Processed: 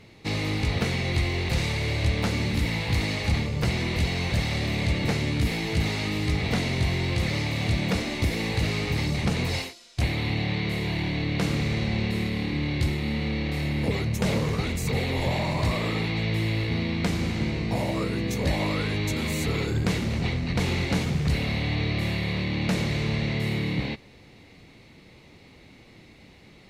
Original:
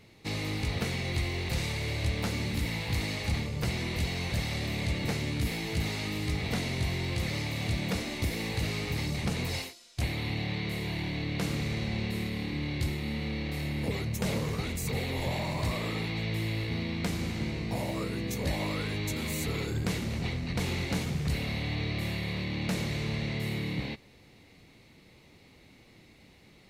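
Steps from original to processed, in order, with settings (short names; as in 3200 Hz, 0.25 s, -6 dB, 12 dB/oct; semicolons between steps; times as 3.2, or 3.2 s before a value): high shelf 9200 Hz -10.5 dB; gain +6 dB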